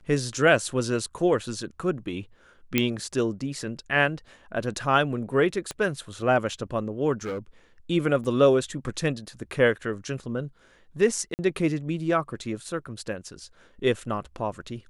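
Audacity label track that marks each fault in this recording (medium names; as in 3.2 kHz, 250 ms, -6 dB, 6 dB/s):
2.780000	2.780000	pop -6 dBFS
5.710000	5.710000	pop -18 dBFS
7.230000	7.390000	clipped -27.5 dBFS
8.240000	8.240000	dropout 4.8 ms
11.340000	11.390000	dropout 49 ms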